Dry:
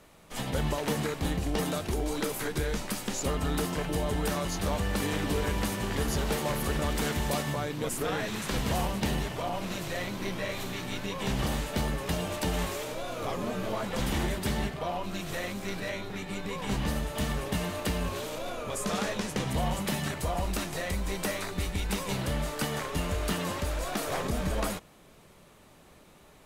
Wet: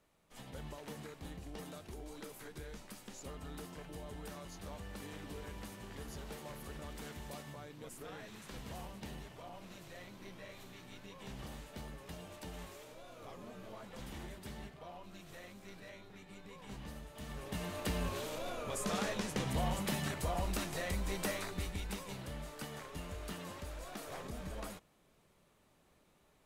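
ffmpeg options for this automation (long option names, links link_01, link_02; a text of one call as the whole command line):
ffmpeg -i in.wav -af "volume=-5.5dB,afade=type=in:start_time=17.21:duration=0.78:silence=0.251189,afade=type=out:start_time=21.29:duration=0.86:silence=0.375837" out.wav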